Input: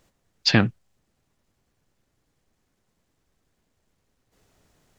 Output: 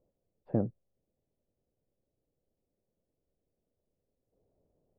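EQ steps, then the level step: ladder low-pass 640 Hz, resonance 50%; -2.5 dB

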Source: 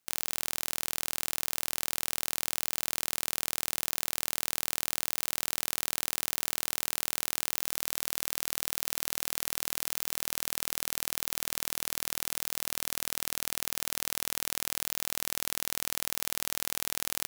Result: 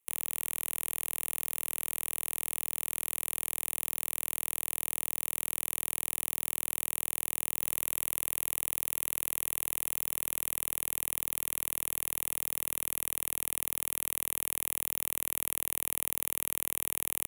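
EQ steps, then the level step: low shelf 140 Hz +3 dB; bell 11000 Hz +9 dB 0.73 oct; fixed phaser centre 1000 Hz, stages 8; -2.5 dB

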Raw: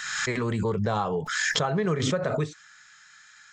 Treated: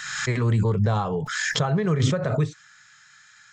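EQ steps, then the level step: bell 120 Hz +10.5 dB 0.85 oct; 0.0 dB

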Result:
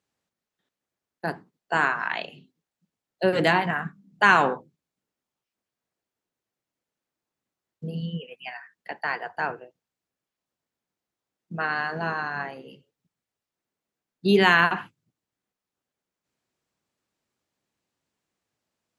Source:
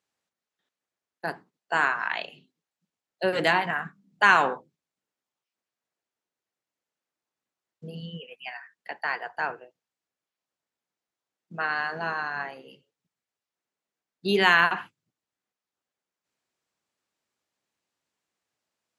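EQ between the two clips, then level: low shelf 360 Hz +9.5 dB; 0.0 dB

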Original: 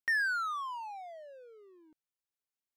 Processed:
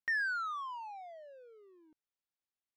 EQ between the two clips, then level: air absorption 73 m; -2.5 dB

